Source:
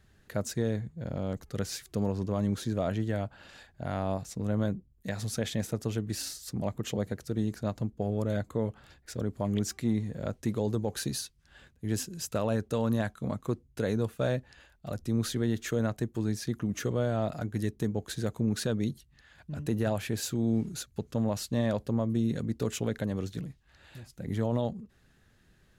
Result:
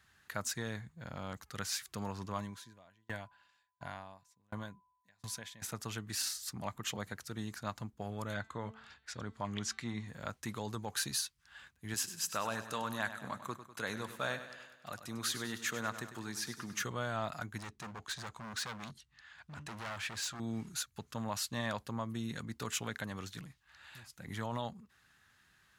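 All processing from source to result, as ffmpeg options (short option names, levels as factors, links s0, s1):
-filter_complex "[0:a]asettb=1/sr,asplit=3[s0][s1][s2];[s0]atrim=end=2.384[s3];[s1]atrim=start=2.38:end=5.62,asetpts=PTS-STARTPTS,afade=t=in:d=0.004:c=qsin,afade=t=out:st=3.236:d=0.004:c=qsin,aeval=exprs='val(0)+0.00158*sin(2*PI*1000*n/s)':c=same,bandreject=f=1300:w=6.7,aeval=exprs='val(0)*pow(10,-36*if(lt(mod(1.4*n/s,1),2*abs(1.4)/1000),1-mod(1.4*n/s,1)/(2*abs(1.4)/1000),(mod(1.4*n/s,1)-2*abs(1.4)/1000)/(1-2*abs(1.4)/1000))/20)':c=same[s4];[s2]atrim=start=5.616[s5];[s3][s4]acrossfade=d=0.004:c1=hsin:c2=qsin[s6];[s6][s5]acrossfade=d=0.004:c1=qsin:c2=hsin,asettb=1/sr,asplit=3[s7][s8][s9];[s7]atrim=end=8.344[s10];[s8]atrim=start=8.34:end=10.08,asetpts=PTS-STARTPTS,afade=t=in:d=0.004:c=qsin,afade=t=out:st=1.736:d=0.004:c=qsin,lowpass=6400,bandreject=f=221.7:t=h:w=4,bandreject=f=443.4:t=h:w=4,bandreject=f=665.1:t=h:w=4,bandreject=f=886.8:t=h:w=4,bandreject=f=1108.5:t=h:w=4,bandreject=f=1330.2:t=h:w=4,bandreject=f=1551.9:t=h:w=4,bandreject=f=1773.6:t=h:w=4,bandreject=f=1995.3:t=h:w=4,bandreject=f=2217:t=h:w=4,bandreject=f=2438.7:t=h:w=4,bandreject=f=2660.4:t=h:w=4,bandreject=f=2882.1:t=h:w=4,bandreject=f=3103.8:t=h:w=4,bandreject=f=3325.5:t=h:w=4,bandreject=f=3547.2:t=h:w=4,bandreject=f=3768.9:t=h:w=4,bandreject=f=3990.6:t=h:w=4,bandreject=f=4212.3:t=h:w=4,bandreject=f=4434:t=h:w=4[s11];[s9]atrim=start=10.076[s12];[s10][s11]acrossfade=d=0.004:c1=hsin:c2=qsin[s13];[s13][s12]acrossfade=d=0.004:c1=qsin:c2=hsin,asettb=1/sr,asplit=3[s14][s15][s16];[s14]atrim=end=11.944[s17];[s15]atrim=start=11.94:end=16.83,asetpts=PTS-STARTPTS,afade=t=in:d=0.004:c=qsin,afade=t=out:st=4.886:d=0.004:c=qsin,highpass=f=190:p=1,aecho=1:1:99|198|297|396|495|594:0.266|0.149|0.0834|0.0467|0.0262|0.0147,atrim=end_sample=215649[s18];[s16]atrim=start=16.826[s19];[s17][s18]acrossfade=d=0.004:c1=hsin:c2=qsin[s20];[s20][s19]acrossfade=d=0.004:c1=qsin:c2=hsin,asettb=1/sr,asplit=3[s21][s22][s23];[s21]atrim=end=17.584[s24];[s22]atrim=start=17.58:end=20.4,asetpts=PTS-STARTPTS,afade=t=in:d=0.004:c=qsin,afade=t=out:st=2.816:d=0.004:c=qsin,lowpass=7400,asoftclip=type=hard:threshold=0.0188[s25];[s23]atrim=start=20.396[s26];[s24][s25]acrossfade=d=0.004:c1=hsin:c2=qsin[s27];[s27][s26]acrossfade=d=0.004:c1=qsin:c2=hsin,highpass=56,lowshelf=f=730:t=q:w=1.5:g=-11.5,volume=1.12"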